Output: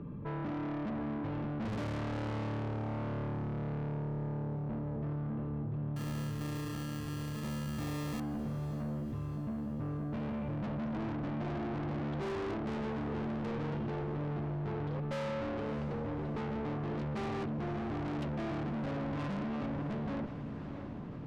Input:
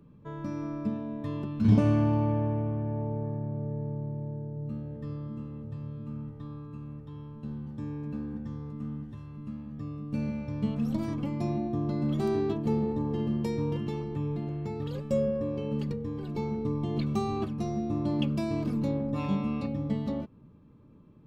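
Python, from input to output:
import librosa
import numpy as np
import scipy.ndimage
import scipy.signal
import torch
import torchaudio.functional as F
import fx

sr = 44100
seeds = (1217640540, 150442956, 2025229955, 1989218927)

y = scipy.signal.sosfilt(scipy.signal.butter(2, 2000.0, 'lowpass', fs=sr, output='sos'), x)
y = fx.sample_hold(y, sr, seeds[0], rate_hz=1500.0, jitter_pct=0, at=(5.96, 8.2))
y = fx.tube_stage(y, sr, drive_db=41.0, bias=0.3)
y = fx.echo_diffused(y, sr, ms=612, feedback_pct=51, wet_db=-14.0)
y = fx.env_flatten(y, sr, amount_pct=50)
y = y * librosa.db_to_amplitude(5.0)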